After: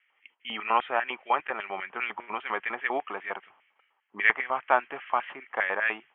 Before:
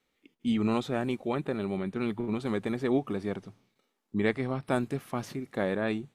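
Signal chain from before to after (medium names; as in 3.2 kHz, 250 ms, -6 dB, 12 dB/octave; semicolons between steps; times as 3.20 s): LFO high-pass square 5 Hz 930–1900 Hz; Chebyshev low-pass 3.2 kHz, order 8; trim +7 dB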